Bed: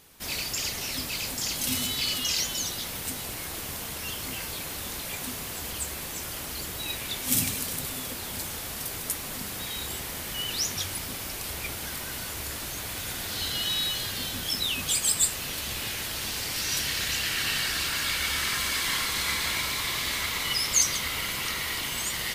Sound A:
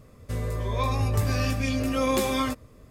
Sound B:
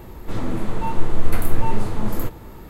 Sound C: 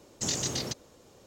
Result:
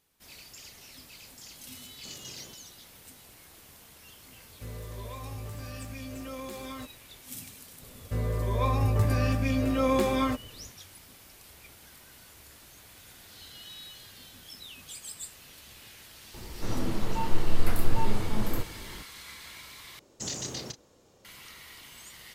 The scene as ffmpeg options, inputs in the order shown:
ffmpeg -i bed.wav -i cue0.wav -i cue1.wav -i cue2.wav -filter_complex "[3:a]asplit=2[link_01][link_02];[1:a]asplit=2[link_03][link_04];[0:a]volume=-17.5dB[link_05];[link_03]alimiter=limit=-21dB:level=0:latency=1:release=71[link_06];[link_04]highshelf=frequency=3200:gain=-10[link_07];[link_02]asplit=2[link_08][link_09];[link_09]adelay=33,volume=-11dB[link_10];[link_08][link_10]amix=inputs=2:normalize=0[link_11];[link_05]asplit=2[link_12][link_13];[link_12]atrim=end=19.994[link_14];[link_11]atrim=end=1.26,asetpts=PTS-STARTPTS,volume=-5dB[link_15];[link_13]atrim=start=21.246[link_16];[link_01]atrim=end=1.26,asetpts=PTS-STARTPTS,volume=-16dB,afade=type=in:duration=0.004:curve=hsin,afade=type=out:start_time=1.256:duration=0.004:curve=hsin,adelay=1820[link_17];[link_06]atrim=end=2.9,asetpts=PTS-STARTPTS,volume=-11dB,afade=type=in:duration=0.004:curve=hsin,afade=type=out:start_time=2.896:duration=0.004:curve=hsin,adelay=4320[link_18];[link_07]atrim=end=2.9,asetpts=PTS-STARTPTS,afade=type=in:duration=0.004:curve=hsin,afade=type=out:start_time=2.896:duration=0.004:curve=hsin,adelay=7820[link_19];[2:a]atrim=end=2.69,asetpts=PTS-STARTPTS,volume=-5.5dB,afade=type=in:duration=0.004:curve=hsin,afade=type=out:start_time=2.686:duration=0.004:curve=hsin,adelay=16340[link_20];[link_14][link_15]acrossfade=duration=0.004:curve1=hsin:curve2=hsin[link_21];[link_21][link_16]acrossfade=duration=0.004:curve1=hsin:curve2=hsin[link_22];[link_22][link_17][link_18][link_19][link_20]amix=inputs=5:normalize=0" out.wav

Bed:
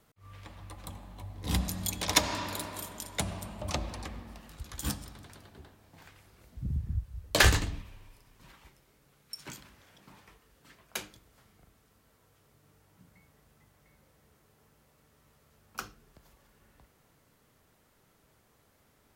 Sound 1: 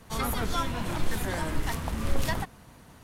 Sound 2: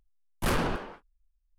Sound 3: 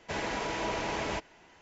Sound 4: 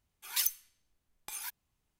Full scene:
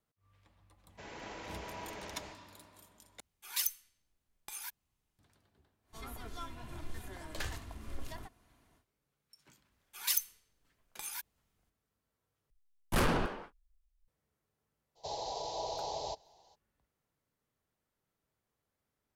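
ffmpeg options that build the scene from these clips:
ffmpeg -i bed.wav -i cue0.wav -i cue1.wav -i cue2.wav -i cue3.wav -filter_complex "[3:a]asplit=2[link_01][link_02];[4:a]asplit=2[link_03][link_04];[0:a]volume=-19.5dB[link_05];[link_01]aecho=1:1:102|186.6|242:0.631|0.316|0.794[link_06];[1:a]aecho=1:1:2.9:0.45[link_07];[link_02]firequalizer=gain_entry='entry(140,0);entry(220,-15);entry(440,4);entry(810,12);entry(1400,-21);entry(2300,-15);entry(4000,14);entry(7800,4)':delay=0.05:min_phase=1[link_08];[link_05]asplit=3[link_09][link_10][link_11];[link_09]atrim=end=3.204[link_12];[link_03]atrim=end=1.99,asetpts=PTS-STARTPTS,volume=-3dB[link_13];[link_10]atrim=start=5.186:end=12.504[link_14];[2:a]atrim=end=1.58,asetpts=PTS-STARTPTS,volume=-2dB[link_15];[link_11]atrim=start=14.076[link_16];[link_06]atrim=end=1.61,asetpts=PTS-STARTPTS,volume=-15.5dB,afade=type=in:duration=0.004:curve=hsin,afade=type=out:start_time=1.606:duration=0.004:curve=hsin,adelay=890[link_17];[link_07]atrim=end=3.03,asetpts=PTS-STARTPTS,volume=-17.5dB,afade=type=in:duration=0.1,afade=type=out:start_time=2.93:duration=0.1,adelay=5830[link_18];[link_04]atrim=end=1.99,asetpts=PTS-STARTPTS,volume=-1dB,afade=type=in:duration=0.004:curve=hsin,afade=type=out:start_time=1.986:duration=0.004:curve=hsin,adelay=9710[link_19];[link_08]atrim=end=1.61,asetpts=PTS-STARTPTS,volume=-11dB,afade=type=in:duration=0.02,afade=type=out:start_time=1.59:duration=0.02,adelay=14950[link_20];[link_12][link_13]acrossfade=duration=0.004:curve1=hsin:curve2=hsin[link_21];[link_21][link_14]acrossfade=duration=0.004:curve1=hsin:curve2=hsin[link_22];[link_22][link_15]acrossfade=duration=0.004:curve1=hsin:curve2=hsin[link_23];[link_23][link_16]acrossfade=duration=0.004:curve1=hsin:curve2=hsin[link_24];[link_24][link_17][link_18][link_19][link_20]amix=inputs=5:normalize=0" out.wav

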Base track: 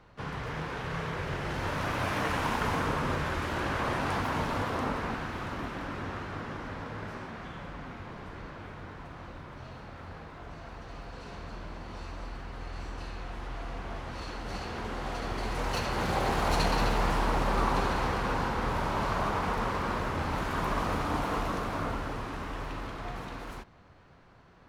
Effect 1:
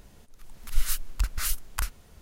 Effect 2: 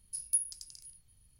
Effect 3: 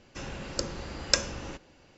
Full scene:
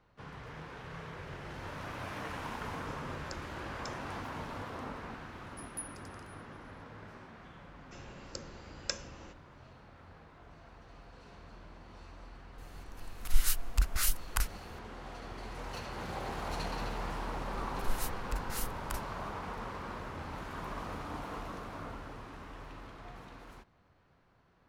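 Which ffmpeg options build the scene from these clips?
ffmpeg -i bed.wav -i cue0.wav -i cue1.wav -i cue2.wav -filter_complex "[3:a]asplit=2[link_01][link_02];[1:a]asplit=2[link_03][link_04];[0:a]volume=-10.5dB[link_05];[link_01]alimiter=limit=-10dB:level=0:latency=1:release=290,atrim=end=1.97,asetpts=PTS-STARTPTS,volume=-15.5dB,afade=type=in:duration=0.004:curve=hsin,afade=type=out:start_time=1.966:duration=0.004:curve=hsin,adelay=2720[link_06];[2:a]atrim=end=1.39,asetpts=PTS-STARTPTS,volume=-12.5dB,afade=type=in:duration=0.004:curve=hsin,afade=type=out:start_time=1.386:duration=0.004:curve=hsin,adelay=5440[link_07];[link_02]atrim=end=1.97,asetpts=PTS-STARTPTS,volume=-12dB,afade=type=in:duration=0.004:curve=hsin,afade=type=out:start_time=1.966:duration=0.004:curve=hsin,adelay=7760[link_08];[link_03]atrim=end=2.21,asetpts=PTS-STARTPTS,volume=-1.5dB,afade=type=in:duration=0.004:curve=hsin,afade=type=out:start_time=2.206:duration=0.004:curve=hsin,adelay=12580[link_09];[link_04]atrim=end=2.21,asetpts=PTS-STARTPTS,volume=-10dB,afade=type=in:duration=0.004:curve=hsin,afade=type=out:start_time=2.206:duration=0.004:curve=hsin,adelay=17120[link_10];[link_05][link_06][link_07][link_08][link_09][link_10]amix=inputs=6:normalize=0" out.wav

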